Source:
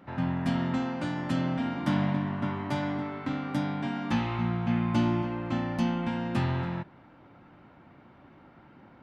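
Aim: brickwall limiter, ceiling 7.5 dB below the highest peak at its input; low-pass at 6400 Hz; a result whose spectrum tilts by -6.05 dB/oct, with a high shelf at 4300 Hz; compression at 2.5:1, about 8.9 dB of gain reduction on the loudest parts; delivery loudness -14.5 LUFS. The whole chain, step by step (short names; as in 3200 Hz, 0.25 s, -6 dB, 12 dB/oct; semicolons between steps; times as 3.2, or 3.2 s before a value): LPF 6400 Hz; high shelf 4300 Hz +4.5 dB; compressor 2.5:1, threshold -36 dBFS; gain +25 dB; limiter -5.5 dBFS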